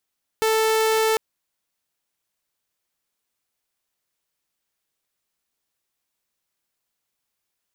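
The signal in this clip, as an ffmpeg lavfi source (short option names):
-f lavfi -i "aevalsrc='0.178*(2*mod(441*t,1)-1)':d=0.75:s=44100"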